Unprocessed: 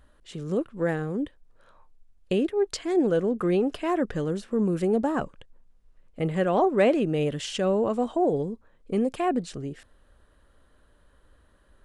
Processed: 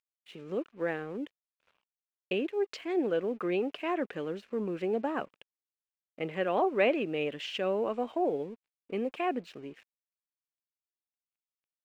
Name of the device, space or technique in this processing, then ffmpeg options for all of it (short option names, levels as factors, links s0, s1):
pocket radio on a weak battery: -af "highpass=280,lowpass=3700,aeval=exprs='sgn(val(0))*max(abs(val(0))-0.00141,0)':c=same,equalizer=f=2500:t=o:w=0.58:g=9,volume=0.562"